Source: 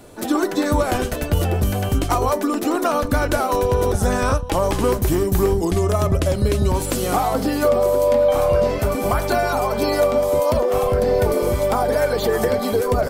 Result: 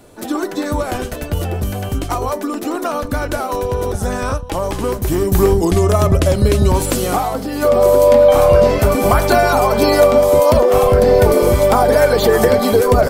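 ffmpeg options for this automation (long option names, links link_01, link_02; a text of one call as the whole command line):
ffmpeg -i in.wav -af "volume=16dB,afade=type=in:start_time=4.99:duration=0.44:silence=0.473151,afade=type=out:start_time=6.85:duration=0.63:silence=0.354813,afade=type=in:start_time=7.48:duration=0.4:silence=0.298538" out.wav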